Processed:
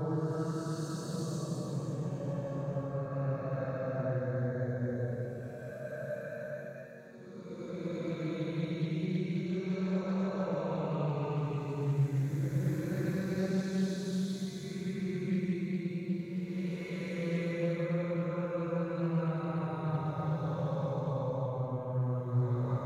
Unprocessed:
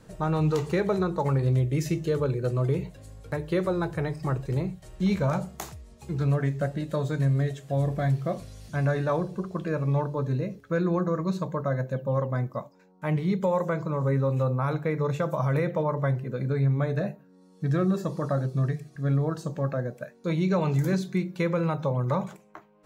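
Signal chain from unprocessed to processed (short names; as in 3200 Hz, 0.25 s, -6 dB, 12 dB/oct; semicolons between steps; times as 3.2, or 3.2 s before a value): stepped spectrum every 50 ms; limiter -26.5 dBFS, peak gain reduction 11 dB; Paulstretch 8.1×, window 0.25 s, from 19.27; Doppler distortion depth 0.18 ms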